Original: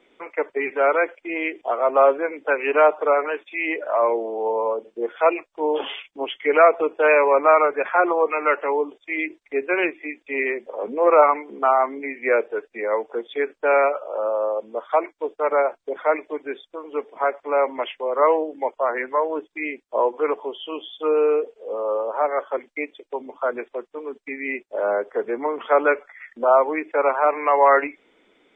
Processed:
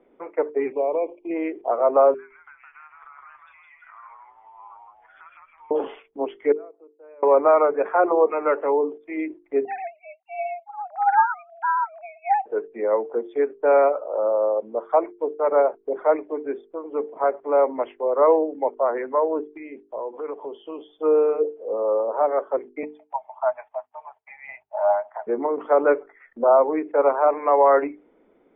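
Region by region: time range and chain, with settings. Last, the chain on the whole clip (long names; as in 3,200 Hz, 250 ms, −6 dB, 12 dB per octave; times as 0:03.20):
0:00.72–0:01.31: Chebyshev band-stop filter 1,100–2,300 Hz, order 4 + downward compressor 4 to 1, threshold −21 dBFS
0:02.14–0:05.71: inverse Chebyshev band-stop filter 130–620 Hz, stop band 50 dB + downward compressor 8 to 1, threshold −38 dBFS + echo with shifted repeats 162 ms, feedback 36%, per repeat −78 Hz, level −3 dB
0:06.52–0:07.23: mu-law and A-law mismatch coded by A + resonant band-pass 330 Hz, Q 2.4 + first difference
0:09.65–0:12.46: three sine waves on the formant tracks + frequency shifter +290 Hz + high-pass filter 840 Hz 24 dB per octave
0:19.53–0:20.88: high-shelf EQ 3,300 Hz +12 dB + downward compressor 3 to 1, threshold −32 dBFS
0:22.83–0:25.27: Chebyshev high-pass with heavy ripple 610 Hz, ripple 6 dB + parametric band 820 Hz +9 dB 1.2 octaves + phase shifter 1.8 Hz, delay 2.4 ms, feedback 29%
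whole clip: Bessel low-pass filter 700 Hz, order 2; mains-hum notches 50/100/150/200/250/300/350/400/450 Hz; boost into a limiter +10.5 dB; level −6.5 dB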